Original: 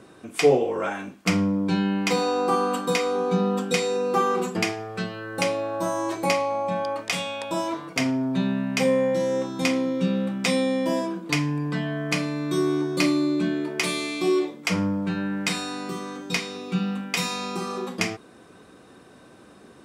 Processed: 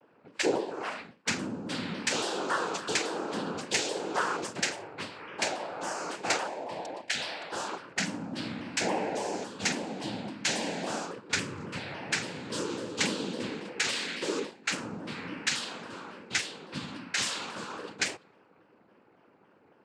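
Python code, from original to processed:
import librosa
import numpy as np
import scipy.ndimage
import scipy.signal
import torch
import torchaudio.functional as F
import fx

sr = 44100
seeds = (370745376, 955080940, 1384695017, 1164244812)

y = fx.spec_erase(x, sr, start_s=6.47, length_s=0.72, low_hz=740.0, high_hz=2100.0)
y = fx.env_lowpass(y, sr, base_hz=940.0, full_db=-20.0)
y = fx.tilt_eq(y, sr, slope=3.0)
y = fx.noise_vocoder(y, sr, seeds[0], bands=8)
y = fx.vibrato_shape(y, sr, shape='saw_down', rate_hz=3.6, depth_cents=160.0)
y = y * 10.0 ** (-6.5 / 20.0)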